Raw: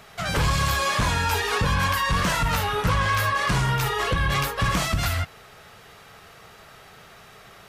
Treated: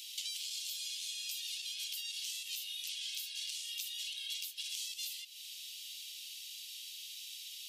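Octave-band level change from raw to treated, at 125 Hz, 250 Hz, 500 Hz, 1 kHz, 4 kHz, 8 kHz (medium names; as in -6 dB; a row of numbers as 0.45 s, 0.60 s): under -40 dB, under -40 dB, under -40 dB, under -40 dB, -7.5 dB, -7.5 dB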